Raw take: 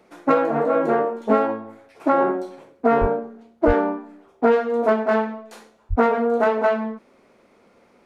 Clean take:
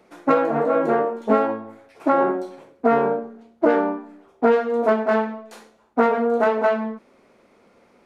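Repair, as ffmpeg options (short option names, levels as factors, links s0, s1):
-filter_complex "[0:a]asplit=3[s0][s1][s2];[s0]afade=t=out:st=3:d=0.02[s3];[s1]highpass=f=140:w=0.5412,highpass=f=140:w=1.3066,afade=t=in:st=3:d=0.02,afade=t=out:st=3.12:d=0.02[s4];[s2]afade=t=in:st=3.12:d=0.02[s5];[s3][s4][s5]amix=inputs=3:normalize=0,asplit=3[s6][s7][s8];[s6]afade=t=out:st=3.66:d=0.02[s9];[s7]highpass=f=140:w=0.5412,highpass=f=140:w=1.3066,afade=t=in:st=3.66:d=0.02,afade=t=out:st=3.78:d=0.02[s10];[s8]afade=t=in:st=3.78:d=0.02[s11];[s9][s10][s11]amix=inputs=3:normalize=0,asplit=3[s12][s13][s14];[s12]afade=t=out:st=5.89:d=0.02[s15];[s13]highpass=f=140:w=0.5412,highpass=f=140:w=1.3066,afade=t=in:st=5.89:d=0.02,afade=t=out:st=6.01:d=0.02[s16];[s14]afade=t=in:st=6.01:d=0.02[s17];[s15][s16][s17]amix=inputs=3:normalize=0"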